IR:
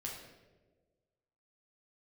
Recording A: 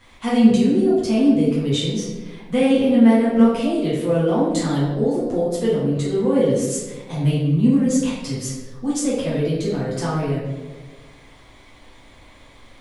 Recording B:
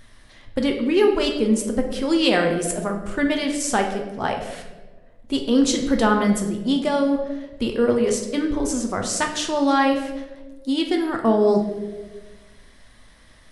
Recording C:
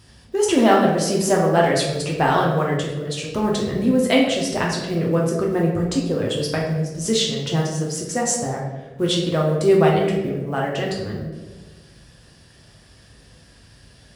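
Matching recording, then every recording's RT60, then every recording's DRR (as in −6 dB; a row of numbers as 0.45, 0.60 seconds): C; 1.4, 1.4, 1.4 seconds; −9.0, 2.5, −2.5 decibels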